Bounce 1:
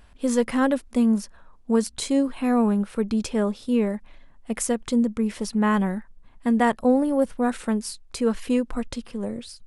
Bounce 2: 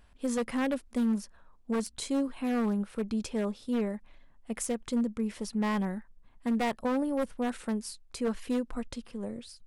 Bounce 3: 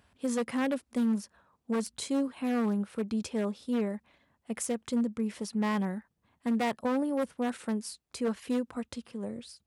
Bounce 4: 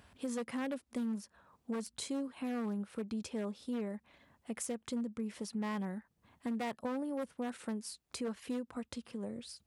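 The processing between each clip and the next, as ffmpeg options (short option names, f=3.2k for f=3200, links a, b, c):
-af "aeval=exprs='0.178*(abs(mod(val(0)/0.178+3,4)-2)-1)':c=same,volume=-7.5dB"
-af "highpass=f=72:w=0.5412,highpass=f=72:w=1.3066"
-af "acompressor=threshold=-49dB:ratio=2,volume=4dB"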